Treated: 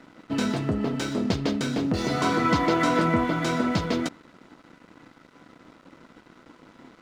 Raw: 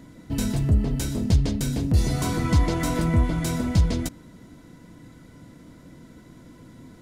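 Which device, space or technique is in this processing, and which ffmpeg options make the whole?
pocket radio on a weak battery: -af "highpass=270,lowpass=4100,aeval=exprs='sgn(val(0))*max(abs(val(0))-0.00211,0)':channel_layout=same,equalizer=frequency=1300:width_type=o:width=0.32:gain=6.5,volume=6dB"

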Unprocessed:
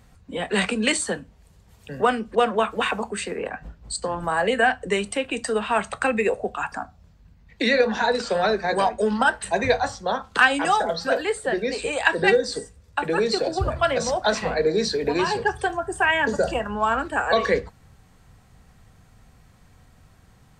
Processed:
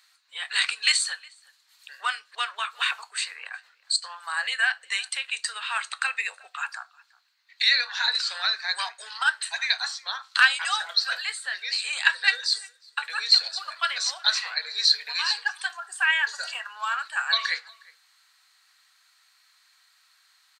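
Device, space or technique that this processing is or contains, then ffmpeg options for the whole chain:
headphones lying on a table: -filter_complex "[0:a]asettb=1/sr,asplit=3[link_01][link_02][link_03];[link_01]atrim=end=9.204[link_04];[link_02]atrim=start=9.2:end=9.95,asetpts=PTS-STARTPTS,afade=type=in:duration=0.004:curve=qsin,afade=type=out:start_time=0.746:duration=0.004:curve=qsin,highpass=frequency=610:width=0.5412,highpass=frequency=610:width=1.3066[link_05];[link_03]atrim=start=9.946[link_06];[link_04][link_05]acrossfade=duration=0.004:curve1=hsin:curve2=qsin[link_07];[link_07][link_06]acrossfade=duration=0.004:curve1=qsin:curve2=hsin,highpass=frequency=1300:width=0.5412,highpass=frequency=1300:width=1.3066,equalizer=frequency=4200:width_type=o:width=0.34:gain=12,asplit=2[link_08][link_09];[link_09]adelay=361.5,volume=-24dB,highshelf=frequency=4000:gain=-8.13[link_10];[link_08][link_10]amix=inputs=2:normalize=0"

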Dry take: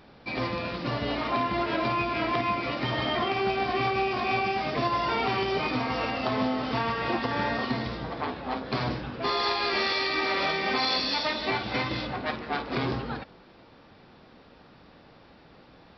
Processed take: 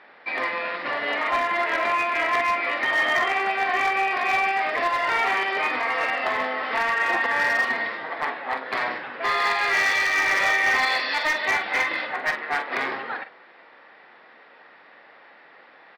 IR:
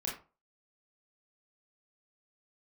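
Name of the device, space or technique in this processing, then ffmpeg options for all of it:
megaphone: -filter_complex "[0:a]highpass=610,lowpass=2700,equalizer=frequency=1900:width_type=o:width=0.41:gain=11,asoftclip=type=hard:threshold=-22dB,asplit=2[link_01][link_02];[link_02]adelay=45,volume=-10.5dB[link_03];[link_01][link_03]amix=inputs=2:normalize=0,volume=5dB"

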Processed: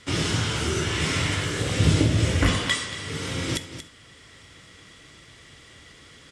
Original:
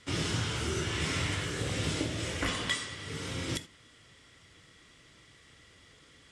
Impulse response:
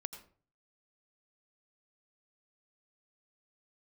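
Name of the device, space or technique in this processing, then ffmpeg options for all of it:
ducked delay: -filter_complex "[0:a]asplit=3[link_01][link_02][link_03];[link_02]adelay=232,volume=-2dB[link_04];[link_03]apad=whole_len=288928[link_05];[link_04][link_05]sidechaincompress=threshold=-43dB:ratio=4:attack=10:release=706[link_06];[link_01][link_06]amix=inputs=2:normalize=0,asettb=1/sr,asplit=3[link_07][link_08][link_09];[link_07]atrim=end=1.804[link_10];[link_08]atrim=start=1.8:end=2.59,asetpts=PTS-STARTPTS,afade=type=in:duration=0.004:curve=qsin,afade=type=out:start_time=0.786:duration=0.004:curve=qsin,equalizer=frequency=81:width=0.38:gain=10[link_11];[link_09]atrim=start=2.586[link_12];[link_10][link_11]acrossfade=duration=0.004:curve1=hsin:curve2=qsin[link_13];[link_13][link_12]acrossfade=duration=0.004:curve1=qsin:curve2=hsin,volume=7dB"

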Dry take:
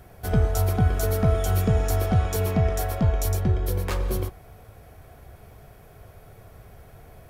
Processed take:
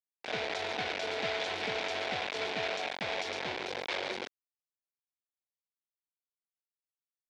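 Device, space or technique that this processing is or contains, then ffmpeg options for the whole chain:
hand-held game console: -af "acrusher=bits=3:mix=0:aa=0.000001,highpass=450,equalizer=frequency=1200:width_type=q:width=4:gain=-8,equalizer=frequency=2300:width_type=q:width=4:gain=6,equalizer=frequency=3600:width_type=q:width=4:gain=5,lowpass=frequency=4900:width=0.5412,lowpass=frequency=4900:width=1.3066,volume=-7.5dB"

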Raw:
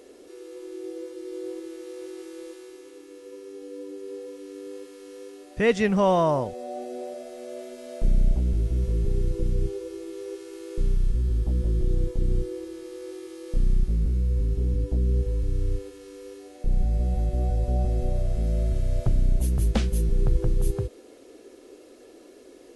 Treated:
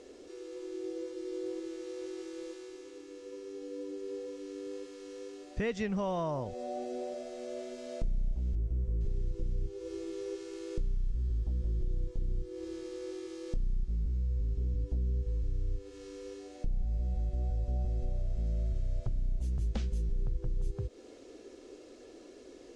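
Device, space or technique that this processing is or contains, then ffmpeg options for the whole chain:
ASMR close-microphone chain: -filter_complex "[0:a]lowpass=frequency=7100:width=0.5412,lowpass=frequency=7100:width=1.3066,asettb=1/sr,asplit=3[link_01][link_02][link_03];[link_01]atrim=end=8.554[link_04];[link_02]atrim=start=8.55:end=9.01,asetpts=PTS-STARTPTS,afade=type=in:duration=0.004:curve=qsin,afade=type=out:start_time=0.456:duration=0.004:curve=qsin,equalizer=frequency=4300:width=0.49:gain=-13[link_05];[link_03]atrim=start=9.006[link_06];[link_04][link_05]acrossfade=duration=0.004:curve1=hsin:curve2=qsin[link_07];[link_07][link_06]acrossfade=duration=0.004:curve1=qsin:curve2=hsin,lowshelf=frequency=130:gain=7.5,acompressor=threshold=-28dB:ratio=4,highshelf=frequency=6800:gain=7.5,volume=-3.5dB"

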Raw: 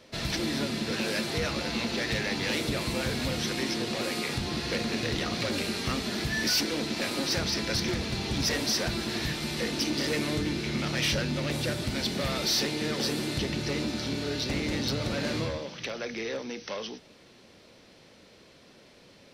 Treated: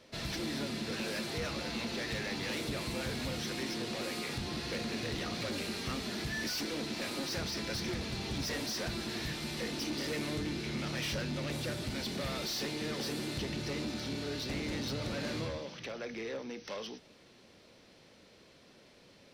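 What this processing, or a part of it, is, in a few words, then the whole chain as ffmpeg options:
saturation between pre-emphasis and de-emphasis: -filter_complex "[0:a]asettb=1/sr,asplit=3[link_01][link_02][link_03];[link_01]atrim=end=15.794[link_04];[link_02]atrim=start=15.79:end=16.65,asetpts=PTS-STARTPTS,afade=type=in:duration=0.004:curve=qsin,afade=type=out:start_time=0.856:duration=0.004:curve=qsin,equalizer=frequency=5800:width_type=o:width=2.3:gain=-4.5[link_05];[link_03]atrim=start=16.646[link_06];[link_04][link_05]acrossfade=duration=0.004:curve1=hsin:curve2=qsin[link_07];[link_07][link_06]acrossfade=duration=0.004:curve1=qsin:curve2=hsin,highshelf=frequency=2600:gain=8,asoftclip=type=tanh:threshold=-24dB,highshelf=frequency=2600:gain=-8,volume=-4.5dB"

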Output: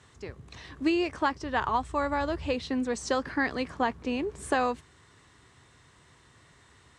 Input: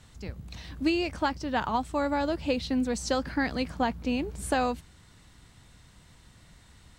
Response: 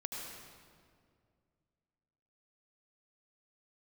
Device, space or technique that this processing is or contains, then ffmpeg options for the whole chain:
car door speaker: -filter_complex "[0:a]highpass=92,equalizer=frequency=190:width_type=q:width=4:gain=-9,equalizer=frequency=400:width_type=q:width=4:gain=8,equalizer=frequency=1100:width_type=q:width=4:gain=7,equalizer=frequency=1800:width_type=q:width=4:gain=5,equalizer=frequency=4500:width_type=q:width=4:gain=-3,lowpass=frequency=9400:width=0.5412,lowpass=frequency=9400:width=1.3066,asplit=3[link_01][link_02][link_03];[link_01]afade=type=out:start_time=1.42:duration=0.02[link_04];[link_02]asubboost=boost=6.5:cutoff=110,afade=type=in:start_time=1.42:duration=0.02,afade=type=out:start_time=2.53:duration=0.02[link_05];[link_03]afade=type=in:start_time=2.53:duration=0.02[link_06];[link_04][link_05][link_06]amix=inputs=3:normalize=0,volume=-1.5dB"

